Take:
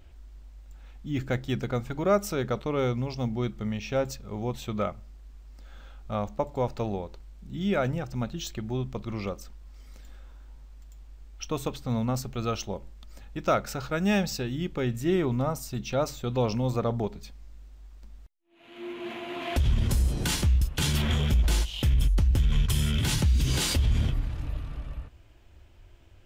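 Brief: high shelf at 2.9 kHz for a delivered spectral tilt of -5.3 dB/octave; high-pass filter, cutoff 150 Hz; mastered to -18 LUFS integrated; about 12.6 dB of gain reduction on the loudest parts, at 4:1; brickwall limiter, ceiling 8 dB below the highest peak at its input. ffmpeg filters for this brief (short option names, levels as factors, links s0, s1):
-af "highpass=150,highshelf=f=2900:g=-5.5,acompressor=threshold=0.0178:ratio=4,volume=13.3,alimiter=limit=0.447:level=0:latency=1"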